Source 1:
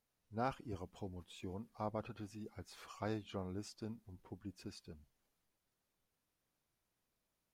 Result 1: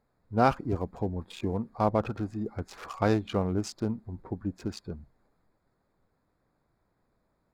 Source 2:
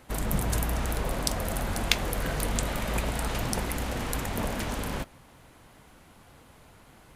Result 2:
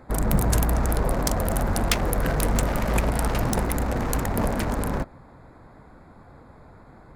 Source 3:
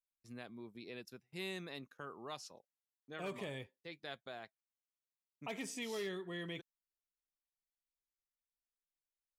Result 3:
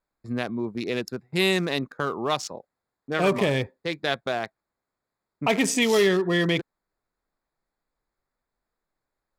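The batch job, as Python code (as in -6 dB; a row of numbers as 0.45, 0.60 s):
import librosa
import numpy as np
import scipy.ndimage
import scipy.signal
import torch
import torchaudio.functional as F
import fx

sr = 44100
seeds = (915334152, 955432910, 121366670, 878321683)

y = fx.wiener(x, sr, points=15)
y = 10.0 ** (-16.0 / 20.0) * (np.abs((y / 10.0 ** (-16.0 / 20.0) + 3.0) % 4.0 - 2.0) - 1.0)
y = librosa.util.normalize(y) * 10.0 ** (-9 / 20.0)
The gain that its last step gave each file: +16.0, +7.0, +21.5 dB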